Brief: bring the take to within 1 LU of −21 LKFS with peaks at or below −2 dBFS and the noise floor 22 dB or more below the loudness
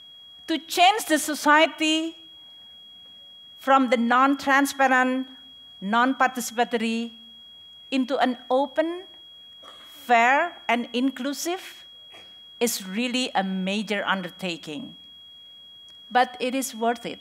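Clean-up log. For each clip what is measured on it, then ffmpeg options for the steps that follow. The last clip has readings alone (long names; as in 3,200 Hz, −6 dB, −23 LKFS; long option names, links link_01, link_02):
interfering tone 3,300 Hz; level of the tone −44 dBFS; integrated loudness −23.0 LKFS; sample peak −6.0 dBFS; target loudness −21.0 LKFS
→ -af "bandreject=frequency=3300:width=30"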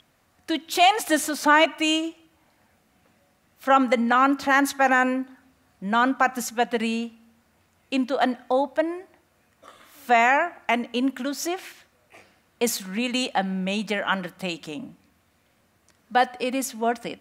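interfering tone none found; integrated loudness −23.0 LKFS; sample peak −6.5 dBFS; target loudness −21.0 LKFS
→ -af "volume=2dB"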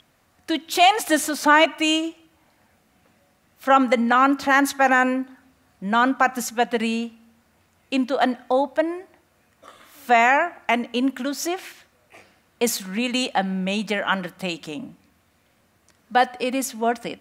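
integrated loudness −21.0 LKFS; sample peak −4.5 dBFS; background noise floor −63 dBFS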